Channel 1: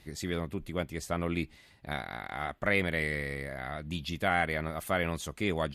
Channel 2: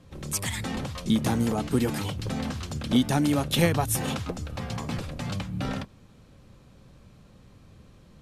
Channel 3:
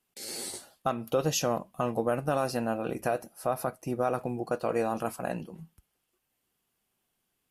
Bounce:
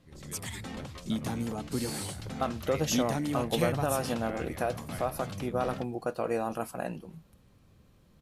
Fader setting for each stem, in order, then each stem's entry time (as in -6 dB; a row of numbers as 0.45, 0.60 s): -16.0, -8.5, -2.0 dB; 0.00, 0.00, 1.55 s